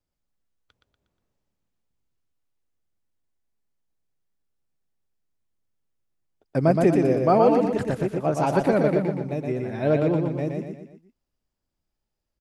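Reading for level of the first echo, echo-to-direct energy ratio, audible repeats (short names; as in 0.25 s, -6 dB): -4.0 dB, -3.0 dB, 4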